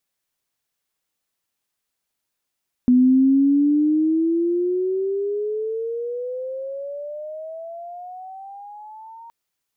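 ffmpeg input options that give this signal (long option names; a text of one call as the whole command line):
ffmpeg -f lavfi -i "aevalsrc='pow(10,(-10.5-27.5*t/6.42)/20)*sin(2*PI*247*6.42/(23*log(2)/12)*(exp(23*log(2)/12*t/6.42)-1))':duration=6.42:sample_rate=44100" out.wav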